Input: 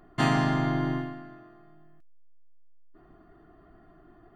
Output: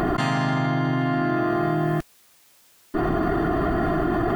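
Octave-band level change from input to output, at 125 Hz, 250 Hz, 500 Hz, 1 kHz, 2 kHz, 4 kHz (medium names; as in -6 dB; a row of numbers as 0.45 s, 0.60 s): +6.5 dB, +8.5 dB, +12.5 dB, +9.0 dB, +7.0 dB, +4.0 dB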